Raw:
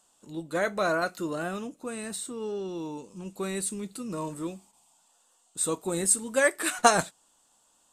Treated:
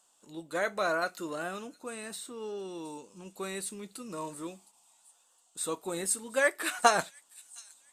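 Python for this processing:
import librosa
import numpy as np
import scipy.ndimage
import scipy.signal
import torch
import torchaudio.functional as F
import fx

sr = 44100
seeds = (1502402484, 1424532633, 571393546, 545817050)

p1 = fx.low_shelf(x, sr, hz=270.0, db=-11.5)
p2 = p1 + fx.echo_wet_highpass(p1, sr, ms=713, feedback_pct=32, hz=4100.0, wet_db=-18.0, dry=0)
p3 = fx.dynamic_eq(p2, sr, hz=8100.0, q=1.3, threshold_db=-44.0, ratio=4.0, max_db=-6)
y = p3 * 10.0 ** (-1.5 / 20.0)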